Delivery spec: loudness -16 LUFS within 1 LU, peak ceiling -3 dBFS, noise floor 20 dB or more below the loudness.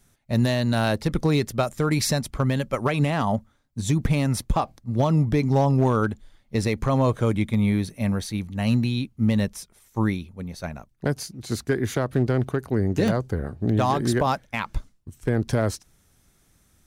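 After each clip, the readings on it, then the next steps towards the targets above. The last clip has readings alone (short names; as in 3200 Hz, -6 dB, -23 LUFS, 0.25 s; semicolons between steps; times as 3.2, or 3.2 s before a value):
clipped 0.4%; flat tops at -13.0 dBFS; dropouts 1; longest dropout 1.6 ms; loudness -24.5 LUFS; peak -13.0 dBFS; loudness target -16.0 LUFS
-> clip repair -13 dBFS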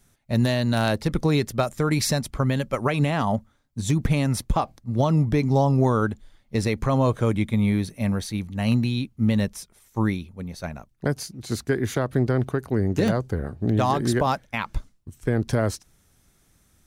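clipped 0.0%; dropouts 1; longest dropout 1.6 ms
-> interpolate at 13.08, 1.6 ms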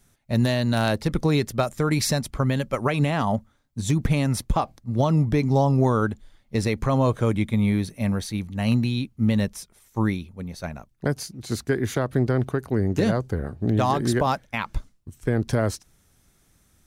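dropouts 0; loudness -24.0 LUFS; peak -7.5 dBFS; loudness target -16.0 LUFS
-> gain +8 dB; limiter -3 dBFS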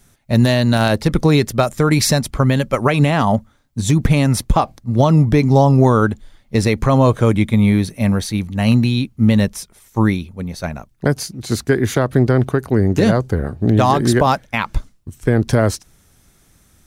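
loudness -16.5 LUFS; peak -3.0 dBFS; noise floor -55 dBFS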